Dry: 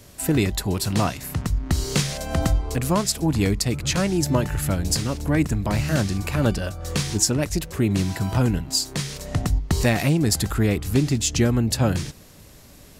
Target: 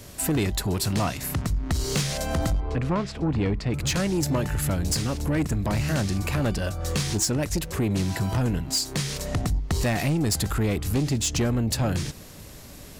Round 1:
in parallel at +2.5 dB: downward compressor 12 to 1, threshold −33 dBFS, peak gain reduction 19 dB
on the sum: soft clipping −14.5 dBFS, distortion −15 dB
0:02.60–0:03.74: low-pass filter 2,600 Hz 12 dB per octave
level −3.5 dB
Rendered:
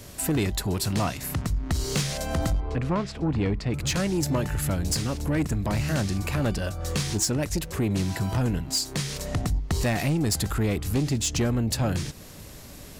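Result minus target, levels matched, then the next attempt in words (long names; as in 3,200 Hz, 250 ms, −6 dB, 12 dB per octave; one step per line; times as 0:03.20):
downward compressor: peak gain reduction +5.5 dB
in parallel at +2.5 dB: downward compressor 12 to 1, threshold −27 dBFS, peak gain reduction 13.5 dB
on the sum: soft clipping −14.5 dBFS, distortion −14 dB
0:02.60–0:03.74: low-pass filter 2,600 Hz 12 dB per octave
level −3.5 dB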